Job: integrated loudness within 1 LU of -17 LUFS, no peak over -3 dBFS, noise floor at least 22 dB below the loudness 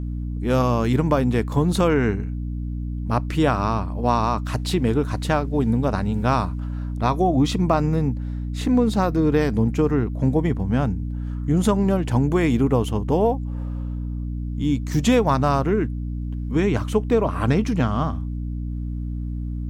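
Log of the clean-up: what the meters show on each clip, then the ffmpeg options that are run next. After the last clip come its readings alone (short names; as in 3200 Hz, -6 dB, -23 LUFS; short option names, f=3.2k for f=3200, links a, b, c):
hum 60 Hz; harmonics up to 300 Hz; hum level -25 dBFS; loudness -22.0 LUFS; peak -6.5 dBFS; loudness target -17.0 LUFS
-> -af "bandreject=f=60:t=h:w=4,bandreject=f=120:t=h:w=4,bandreject=f=180:t=h:w=4,bandreject=f=240:t=h:w=4,bandreject=f=300:t=h:w=4"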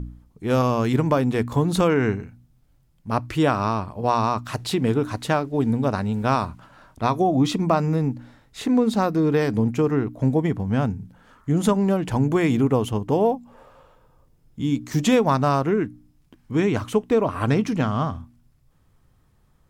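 hum none; loudness -22.5 LUFS; peak -6.5 dBFS; loudness target -17.0 LUFS
-> -af "volume=5.5dB,alimiter=limit=-3dB:level=0:latency=1"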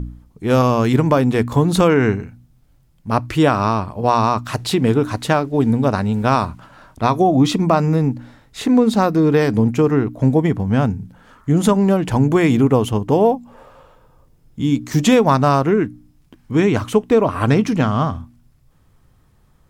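loudness -17.0 LUFS; peak -3.0 dBFS; noise floor -55 dBFS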